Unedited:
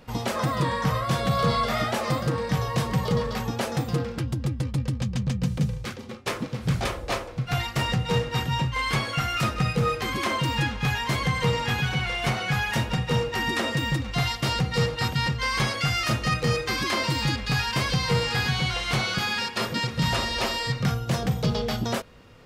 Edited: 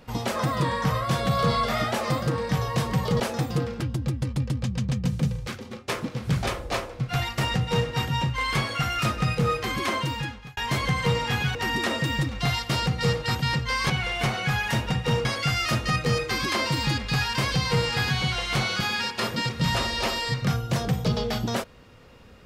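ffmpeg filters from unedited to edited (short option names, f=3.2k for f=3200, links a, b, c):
-filter_complex "[0:a]asplit=6[a][b][c][d][e][f];[a]atrim=end=3.202[g];[b]atrim=start=3.578:end=10.95,asetpts=PTS-STARTPTS,afade=t=out:st=6.702:d=0.67[h];[c]atrim=start=10.95:end=11.932,asetpts=PTS-STARTPTS,afade=t=in:d=0.004:c=hsin[i];[d]atrim=start=13.278:end=15.632[j];[e]atrim=start=11.928:end=13.282[k];[f]atrim=start=15.628[l];[h][i]concat=n=2:v=0:a=1[m];[g][m]acrossfade=d=0.004:c1=hsin:c2=hsin[n];[n][j]acrossfade=d=0.004:c1=hsin:c2=hsin[o];[o][k]acrossfade=d=0.004:c1=hsin:c2=hsin[p];[p][l]acrossfade=d=0.004:c1=hsin:c2=hsin"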